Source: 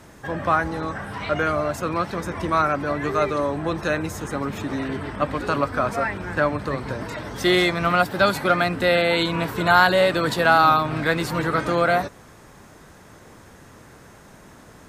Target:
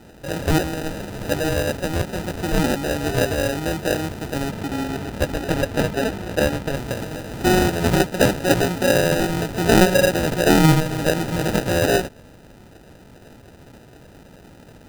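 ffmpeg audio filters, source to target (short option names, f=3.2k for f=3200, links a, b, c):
-filter_complex "[0:a]acrusher=samples=40:mix=1:aa=0.000001,asplit=3[a][b][c];[a]afade=t=out:st=4.49:d=0.02[d];[b]adynamicequalizer=threshold=0.00794:dfrequency=4500:dqfactor=0.7:tfrequency=4500:tqfactor=0.7:attack=5:release=100:ratio=0.375:range=2.5:mode=cutabove:tftype=highshelf,afade=t=in:st=4.49:d=0.02,afade=t=out:st=6.75:d=0.02[e];[c]afade=t=in:st=6.75:d=0.02[f];[d][e][f]amix=inputs=3:normalize=0,volume=1.5dB"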